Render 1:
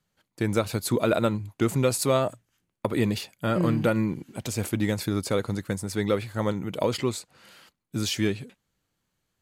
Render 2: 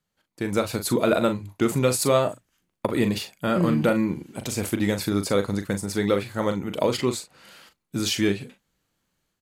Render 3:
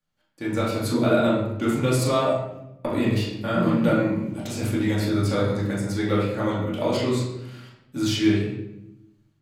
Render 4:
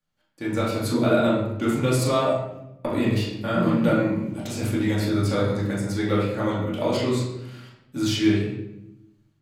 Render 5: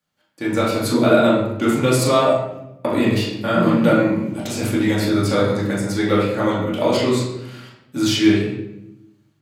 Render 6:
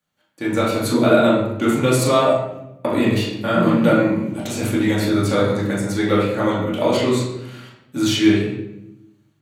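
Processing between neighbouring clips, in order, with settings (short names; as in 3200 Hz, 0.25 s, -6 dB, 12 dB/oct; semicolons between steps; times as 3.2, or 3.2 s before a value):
bell 110 Hz -7 dB 0.34 oct; AGC gain up to 6.5 dB; doubler 40 ms -9 dB; gain -3.5 dB
reverb RT60 0.85 s, pre-delay 3 ms, DRR -7 dB; gain -7.5 dB
nothing audible
HPF 160 Hz 6 dB/oct; gain +6.5 dB
notch 5000 Hz, Q 7.6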